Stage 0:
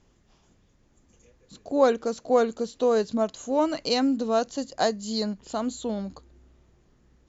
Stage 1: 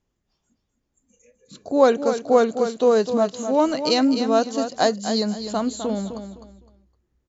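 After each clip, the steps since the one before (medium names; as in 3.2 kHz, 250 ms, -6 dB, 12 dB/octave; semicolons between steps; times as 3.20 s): spectral noise reduction 18 dB; on a send: feedback delay 256 ms, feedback 25%, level -9 dB; on the sum: trim +4.5 dB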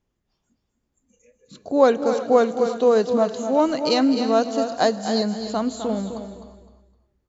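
treble shelf 6.4 kHz -6.5 dB; gated-style reverb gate 390 ms rising, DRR 12 dB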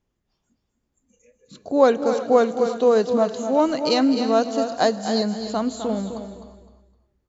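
no audible change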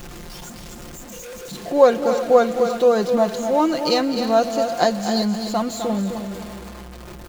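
jump at every zero crossing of -31.5 dBFS; comb 5.7 ms, depth 55%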